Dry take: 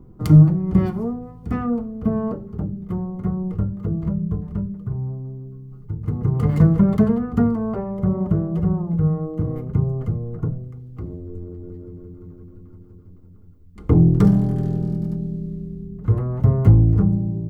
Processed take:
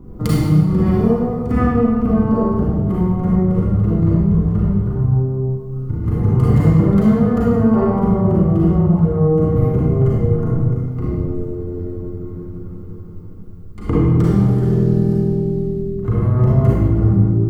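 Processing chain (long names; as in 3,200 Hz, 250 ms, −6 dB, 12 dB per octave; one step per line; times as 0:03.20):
downward compressor 5 to 1, threshold −22 dBFS, peak gain reduction 14.5 dB
convolution reverb RT60 1.7 s, pre-delay 33 ms, DRR −7.5 dB
level +4.5 dB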